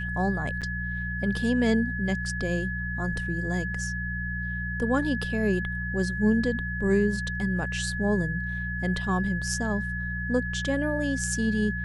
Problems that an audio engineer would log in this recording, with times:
hum 60 Hz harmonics 3 -33 dBFS
whine 1.7 kHz -32 dBFS
0.61–0.62 s: dropout 7.3 ms

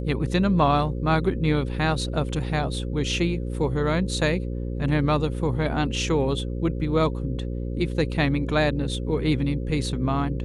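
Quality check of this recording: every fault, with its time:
buzz 60 Hz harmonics 9 -29 dBFS

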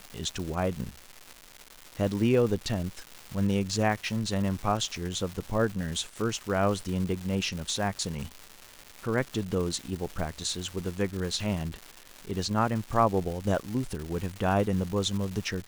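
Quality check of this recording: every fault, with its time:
crackle 440 per s -34 dBFS

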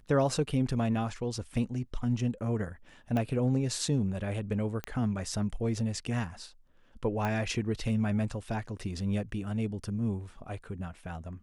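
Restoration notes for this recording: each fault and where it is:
3.17 s: pop -20 dBFS
4.84 s: pop -20 dBFS
7.25 s: pop -19 dBFS

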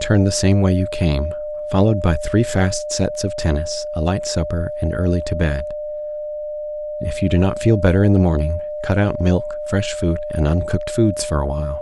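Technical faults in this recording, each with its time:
whine 600 Hz -24 dBFS

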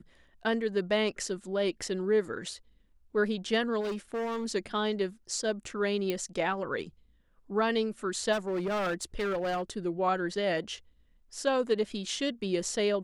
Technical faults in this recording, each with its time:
3.80–4.46 s: clipped -30 dBFS
6.10 s: pop -17 dBFS
8.32–9.62 s: clipped -27.5 dBFS

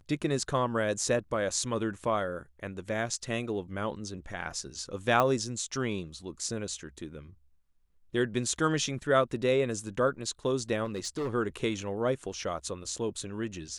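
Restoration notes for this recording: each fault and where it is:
5.20 s: pop -13 dBFS
10.85–11.30 s: clipped -28.5 dBFS

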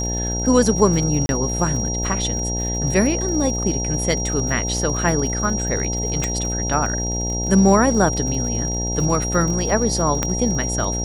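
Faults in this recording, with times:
buzz 60 Hz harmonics 15 -25 dBFS
crackle 69 per s -28 dBFS
whine 5.7 kHz -25 dBFS
1.26–1.29 s: dropout 31 ms
6.24 s: pop -8 dBFS
10.23 s: pop -5 dBFS

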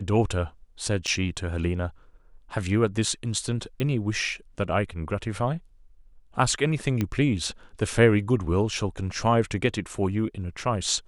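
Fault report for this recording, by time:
1.07–1.08 s: dropout 7.4 ms
3.80 s: pop -17 dBFS
7.01 s: pop -13 dBFS

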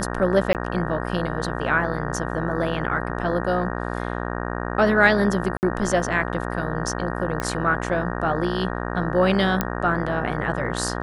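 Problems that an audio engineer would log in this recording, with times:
buzz 60 Hz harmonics 31 -28 dBFS
0.53–0.55 s: dropout 18 ms
5.57–5.63 s: dropout 59 ms
7.40 s: pop -12 dBFS
9.61 s: pop -6 dBFS

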